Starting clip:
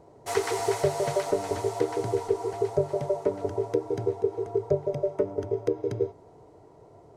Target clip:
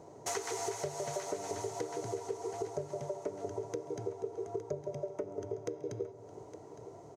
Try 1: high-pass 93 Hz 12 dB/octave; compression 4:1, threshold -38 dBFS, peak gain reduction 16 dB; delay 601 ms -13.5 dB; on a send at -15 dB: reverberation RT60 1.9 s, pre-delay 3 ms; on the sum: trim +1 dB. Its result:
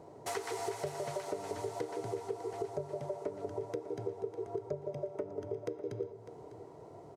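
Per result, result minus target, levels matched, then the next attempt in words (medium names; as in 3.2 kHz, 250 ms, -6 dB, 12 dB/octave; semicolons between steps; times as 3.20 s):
8 kHz band -7.0 dB; echo 261 ms early
high-pass 93 Hz 12 dB/octave; compression 4:1, threshold -38 dBFS, peak gain reduction 16 dB; peaking EQ 6.4 kHz +11.5 dB 0.4 oct; delay 601 ms -13.5 dB; on a send at -15 dB: reverberation RT60 1.9 s, pre-delay 3 ms; on the sum: trim +1 dB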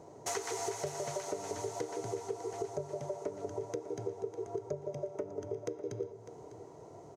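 echo 261 ms early
high-pass 93 Hz 12 dB/octave; compression 4:1, threshold -38 dBFS, peak gain reduction 16 dB; peaking EQ 6.4 kHz +11.5 dB 0.4 oct; delay 862 ms -13.5 dB; on a send at -15 dB: reverberation RT60 1.9 s, pre-delay 3 ms; on the sum: trim +1 dB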